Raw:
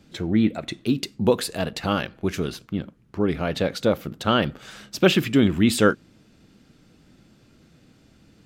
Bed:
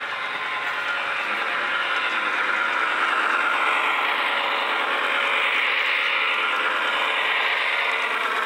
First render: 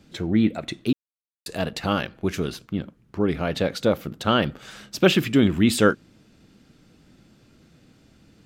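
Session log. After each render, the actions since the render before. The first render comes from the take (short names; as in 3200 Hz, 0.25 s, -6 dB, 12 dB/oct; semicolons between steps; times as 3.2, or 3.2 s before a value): 0.93–1.46 mute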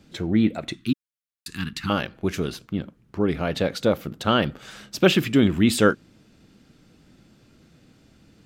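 0.75–1.9 Chebyshev band-stop 260–1300 Hz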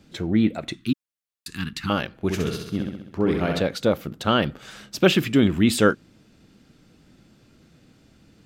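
2.14–3.61 flutter echo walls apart 11.2 m, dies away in 0.83 s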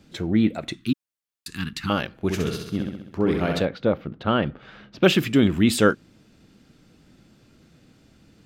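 3.65–5.03 air absorption 330 m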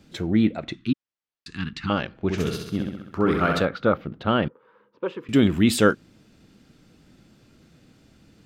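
0.47–2.38 air absorption 120 m; 2.97–3.97 bell 1300 Hz +13 dB 0.45 oct; 4.48–5.29 double band-pass 690 Hz, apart 1 oct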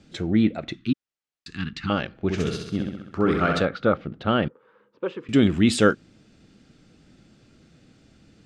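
LPF 8900 Hz 24 dB/oct; bell 980 Hz -5.5 dB 0.22 oct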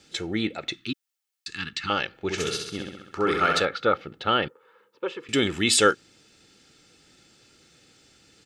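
tilt +3 dB/oct; comb 2.3 ms, depth 39%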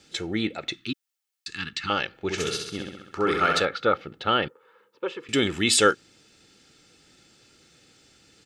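nothing audible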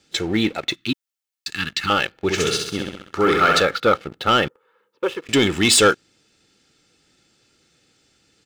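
sample leveller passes 2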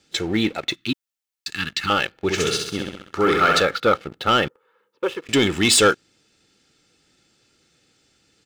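gain -1 dB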